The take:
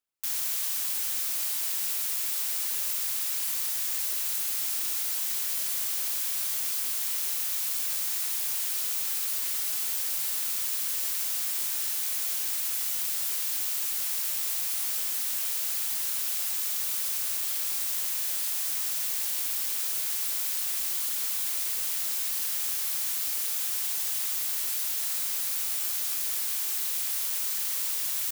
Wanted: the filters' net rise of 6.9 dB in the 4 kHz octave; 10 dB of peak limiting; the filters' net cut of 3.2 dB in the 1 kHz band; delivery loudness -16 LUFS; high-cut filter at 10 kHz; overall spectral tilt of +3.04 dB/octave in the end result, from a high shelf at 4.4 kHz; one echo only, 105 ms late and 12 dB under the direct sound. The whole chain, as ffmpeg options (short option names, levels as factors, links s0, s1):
-af "lowpass=10000,equalizer=f=1000:t=o:g=-5,equalizer=f=4000:t=o:g=5.5,highshelf=f=4400:g=6,alimiter=level_in=1.26:limit=0.0631:level=0:latency=1,volume=0.794,aecho=1:1:105:0.251,volume=6.31"